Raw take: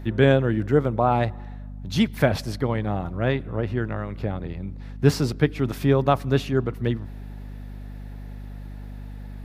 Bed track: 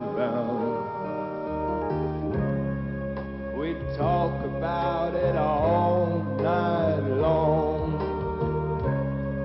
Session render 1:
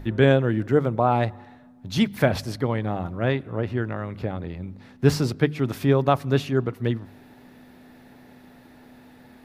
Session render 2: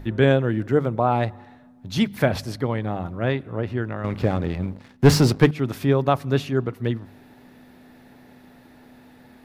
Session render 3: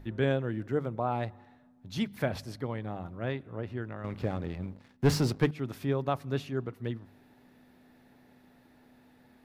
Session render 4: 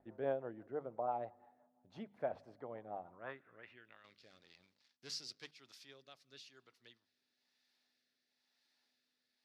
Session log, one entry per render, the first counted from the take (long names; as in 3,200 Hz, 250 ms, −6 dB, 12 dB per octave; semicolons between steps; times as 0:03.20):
hum removal 50 Hz, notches 4
0:04.04–0:05.51: leveller curve on the samples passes 2
level −10.5 dB
band-pass filter sweep 720 Hz → 4,900 Hz, 0:02.99–0:04.18; rotating-speaker cabinet horn 6 Hz, later 1 Hz, at 0:03.31